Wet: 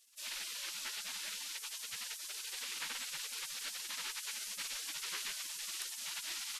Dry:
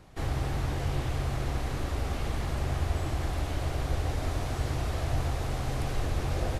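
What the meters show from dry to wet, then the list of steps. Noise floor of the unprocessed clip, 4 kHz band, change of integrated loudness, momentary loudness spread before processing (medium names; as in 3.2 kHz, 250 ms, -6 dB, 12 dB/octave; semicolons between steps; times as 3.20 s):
-34 dBFS, +3.5 dB, -8.0 dB, 2 LU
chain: high-pass 68 Hz 12 dB/octave; spectral gate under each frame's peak -30 dB weak; trim +7 dB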